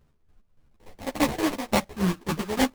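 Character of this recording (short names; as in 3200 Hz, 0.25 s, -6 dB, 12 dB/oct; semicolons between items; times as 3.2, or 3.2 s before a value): aliases and images of a low sample rate 1400 Hz, jitter 20%; chopped level 3.5 Hz, depth 65%, duty 40%; a shimmering, thickened sound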